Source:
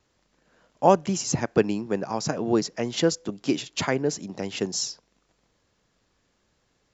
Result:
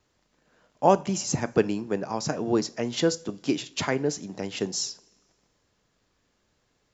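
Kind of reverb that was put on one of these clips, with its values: two-slope reverb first 0.33 s, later 1.6 s, from -19 dB, DRR 13.5 dB; gain -1.5 dB

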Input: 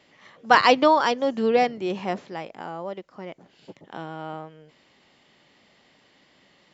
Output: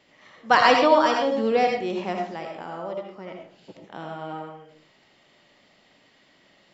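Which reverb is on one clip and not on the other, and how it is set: digital reverb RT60 0.46 s, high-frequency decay 0.65×, pre-delay 40 ms, DRR 1 dB; gain -2 dB

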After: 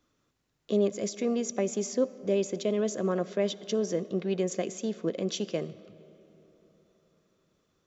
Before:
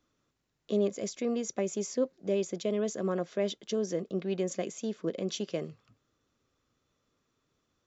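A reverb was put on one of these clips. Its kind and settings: digital reverb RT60 4 s, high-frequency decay 0.5×, pre-delay 20 ms, DRR 17.5 dB; gain +2.5 dB

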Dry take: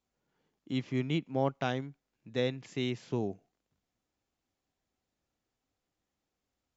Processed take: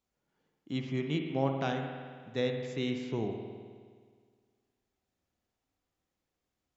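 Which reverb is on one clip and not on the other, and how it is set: spring tank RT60 1.8 s, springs 52 ms, chirp 65 ms, DRR 4 dB; gain -1.5 dB

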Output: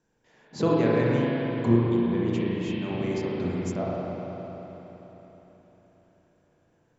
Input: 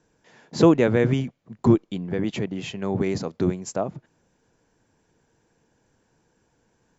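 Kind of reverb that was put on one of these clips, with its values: spring tank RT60 4 s, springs 34/43 ms, chirp 25 ms, DRR -6 dB; gain -9 dB

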